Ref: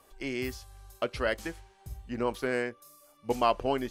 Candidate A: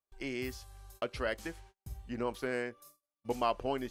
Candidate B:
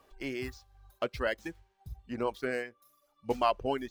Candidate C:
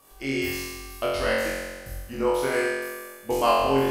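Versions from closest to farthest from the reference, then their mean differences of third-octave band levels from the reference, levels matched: A, B, C; 2.0, 5.0, 9.0 decibels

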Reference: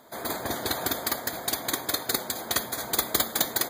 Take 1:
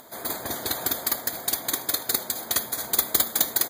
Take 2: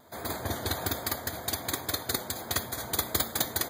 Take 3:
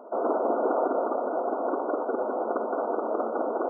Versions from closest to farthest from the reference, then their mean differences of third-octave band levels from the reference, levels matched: 2, 1, 3; 1.5, 3.5, 23.0 decibels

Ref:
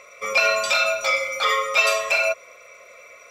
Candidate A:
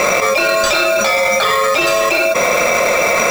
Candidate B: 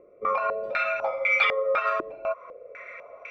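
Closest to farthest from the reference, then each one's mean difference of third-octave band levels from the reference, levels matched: B, A; 9.5, 13.0 decibels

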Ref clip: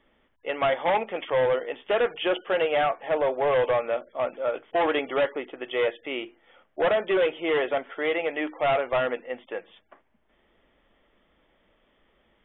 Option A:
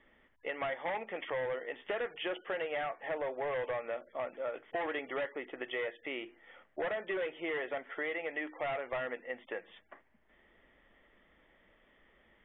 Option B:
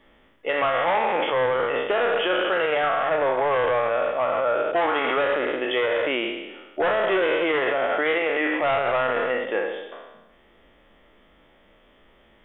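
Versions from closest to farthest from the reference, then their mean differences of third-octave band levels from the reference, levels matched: A, B; 2.0, 5.5 decibels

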